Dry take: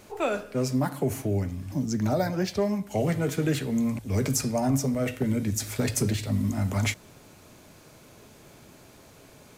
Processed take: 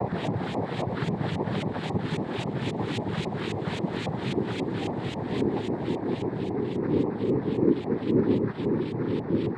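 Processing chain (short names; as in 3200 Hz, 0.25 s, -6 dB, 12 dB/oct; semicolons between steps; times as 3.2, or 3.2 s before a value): limiter -20.5 dBFS, peak gain reduction 6.5 dB; Paulstretch 16×, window 0.50 s, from 3.35; LFO low-pass saw up 3.7 Hz 580–3200 Hz; noise vocoder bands 6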